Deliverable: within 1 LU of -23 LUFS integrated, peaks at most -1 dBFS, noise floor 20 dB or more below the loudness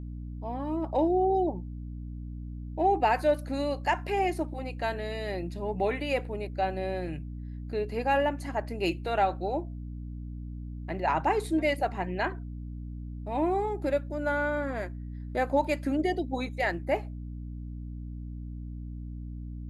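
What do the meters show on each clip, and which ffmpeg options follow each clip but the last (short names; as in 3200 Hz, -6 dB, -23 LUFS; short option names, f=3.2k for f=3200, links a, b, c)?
hum 60 Hz; harmonics up to 300 Hz; hum level -36 dBFS; loudness -31.0 LUFS; peak -13.5 dBFS; loudness target -23.0 LUFS
-> -af "bandreject=f=60:t=h:w=4,bandreject=f=120:t=h:w=4,bandreject=f=180:t=h:w=4,bandreject=f=240:t=h:w=4,bandreject=f=300:t=h:w=4"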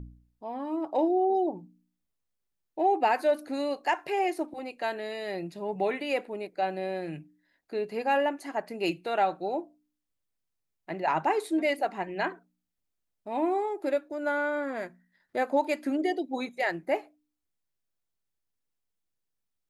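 hum none; loudness -30.0 LUFS; peak -13.5 dBFS; loudness target -23.0 LUFS
-> -af "volume=7dB"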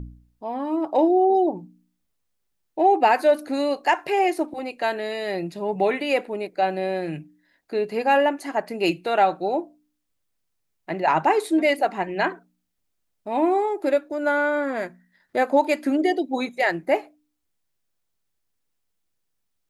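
loudness -23.0 LUFS; peak -6.5 dBFS; noise floor -75 dBFS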